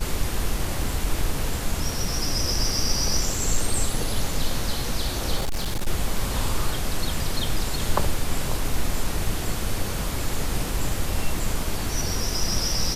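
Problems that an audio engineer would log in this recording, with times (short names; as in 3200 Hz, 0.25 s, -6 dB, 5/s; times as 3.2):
5.36–5.88 clipped -21 dBFS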